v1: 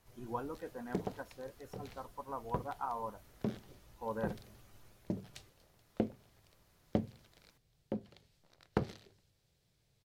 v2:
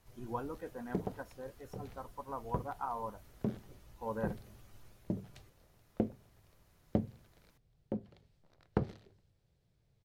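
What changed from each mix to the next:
background: add high-shelf EQ 2,200 Hz −10.5 dB
master: add low-shelf EQ 140 Hz +4.5 dB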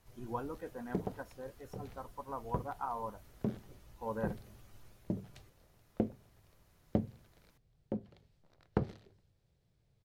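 nothing changed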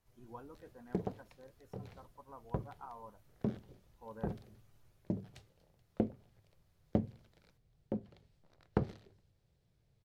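speech −11.0 dB

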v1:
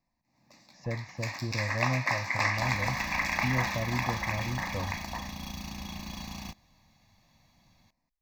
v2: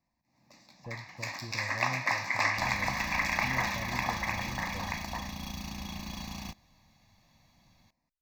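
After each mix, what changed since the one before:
speech −9.0 dB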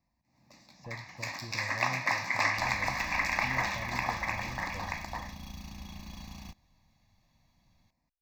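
speech: add spectral tilt +1.5 dB per octave
second sound −7.5 dB
master: add low-shelf EQ 96 Hz +8.5 dB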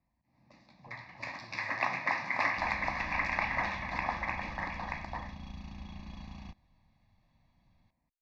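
speech −11.5 dB
master: add high-frequency loss of the air 220 metres

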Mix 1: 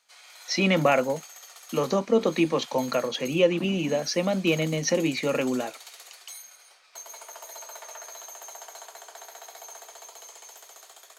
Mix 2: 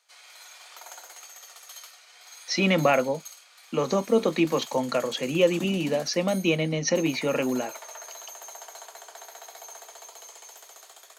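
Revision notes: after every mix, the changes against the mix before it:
speech: entry +2.00 s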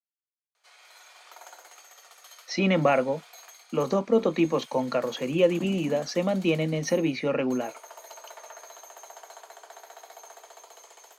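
background: entry +0.55 s
master: add high-shelf EQ 2,600 Hz −8 dB

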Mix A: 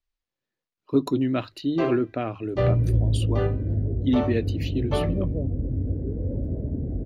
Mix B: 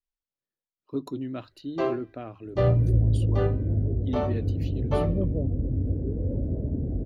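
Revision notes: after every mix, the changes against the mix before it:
speech −9.5 dB
master: add parametric band 2,300 Hz −4 dB 0.95 octaves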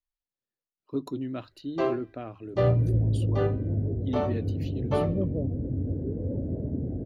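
second sound: add high-pass filter 95 Hz

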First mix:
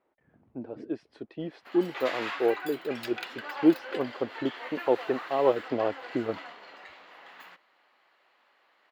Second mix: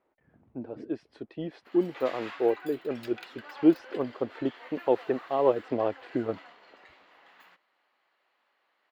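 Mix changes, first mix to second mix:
background −7.5 dB
master: add low-shelf EQ 80 Hz +5.5 dB

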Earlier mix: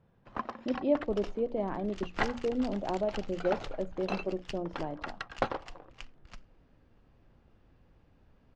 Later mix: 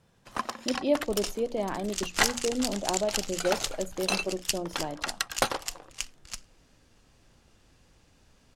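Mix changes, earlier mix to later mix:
second sound: add low-pass filter 10,000 Hz
master: remove head-to-tape spacing loss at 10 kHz 40 dB

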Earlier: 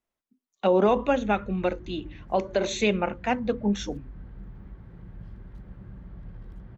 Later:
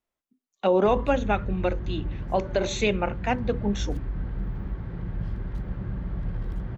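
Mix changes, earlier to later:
background +12.0 dB
master: add parametric band 210 Hz −3 dB 0.26 octaves

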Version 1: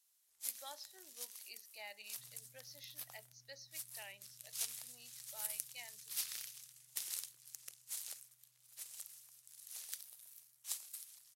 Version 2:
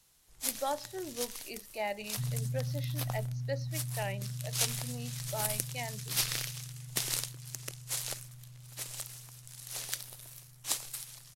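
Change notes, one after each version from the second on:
first sound: add high-shelf EQ 2,500 Hz +10.5 dB
master: remove first difference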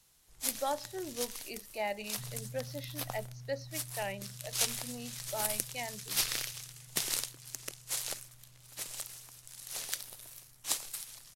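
second sound −11.0 dB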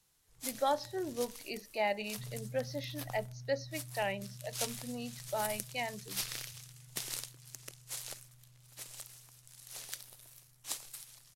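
speech +3.0 dB
first sound −6.5 dB

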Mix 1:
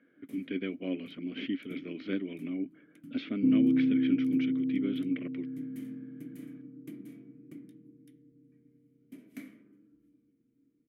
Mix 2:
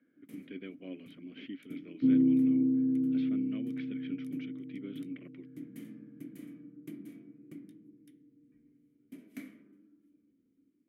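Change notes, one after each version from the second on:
speech −9.5 dB
second sound: entry −1.40 s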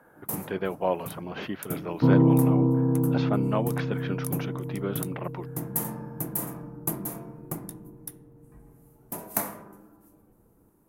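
master: remove formant filter i

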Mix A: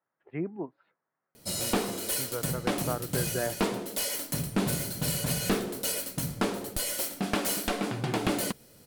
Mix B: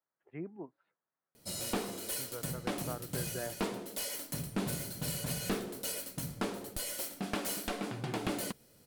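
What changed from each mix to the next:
speech −9.0 dB
background −7.0 dB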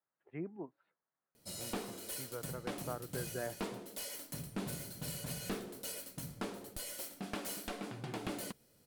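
background −5.5 dB

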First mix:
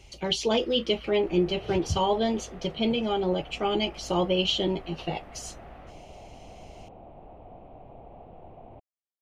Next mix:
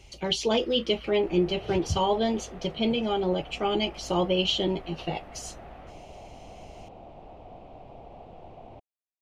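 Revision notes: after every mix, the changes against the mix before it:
second sound: remove high-frequency loss of the air 430 metres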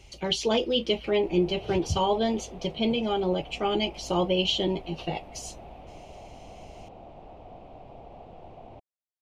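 first sound: add flat-topped bell 1,500 Hz −12 dB 1 octave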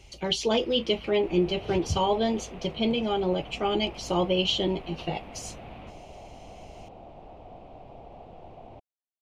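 first sound +10.0 dB

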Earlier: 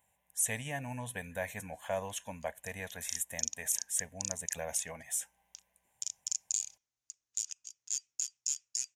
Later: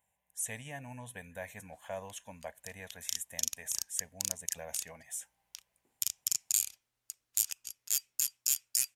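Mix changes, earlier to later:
speech −5.5 dB
background: remove transistor ladder low-pass 7,100 Hz, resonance 65%

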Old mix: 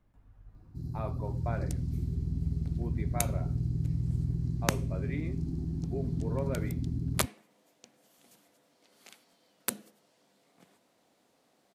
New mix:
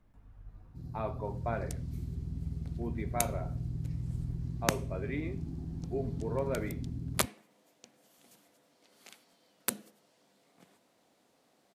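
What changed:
first sound −6.0 dB
reverb: on, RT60 0.45 s

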